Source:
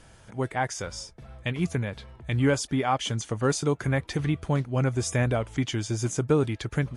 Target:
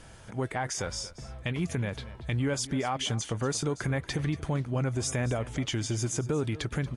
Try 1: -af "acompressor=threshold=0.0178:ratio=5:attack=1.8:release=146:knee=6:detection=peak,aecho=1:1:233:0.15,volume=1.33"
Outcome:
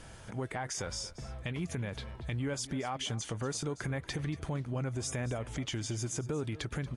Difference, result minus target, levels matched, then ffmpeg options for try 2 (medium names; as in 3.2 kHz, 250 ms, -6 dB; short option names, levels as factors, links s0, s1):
compression: peak gain reduction +6 dB
-af "acompressor=threshold=0.0422:ratio=5:attack=1.8:release=146:knee=6:detection=peak,aecho=1:1:233:0.15,volume=1.33"